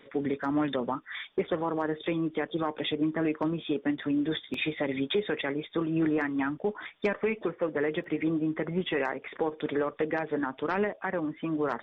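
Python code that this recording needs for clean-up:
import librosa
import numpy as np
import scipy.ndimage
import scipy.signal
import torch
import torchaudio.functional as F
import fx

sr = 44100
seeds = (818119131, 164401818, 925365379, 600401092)

y = fx.fix_interpolate(x, sr, at_s=(4.54, 8.04, 10.76), length_ms=2.4)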